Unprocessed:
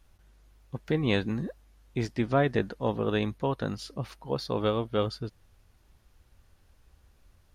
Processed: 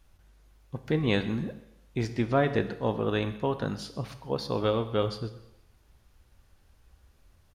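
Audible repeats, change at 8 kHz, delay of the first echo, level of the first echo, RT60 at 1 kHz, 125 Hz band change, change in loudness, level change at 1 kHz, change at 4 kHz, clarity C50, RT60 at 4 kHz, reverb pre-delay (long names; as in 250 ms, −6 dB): 1, +0.5 dB, 131 ms, −19.0 dB, 0.90 s, +0.5 dB, +0.5 dB, 0.0 dB, +0.5 dB, 12.5 dB, 0.85 s, 19 ms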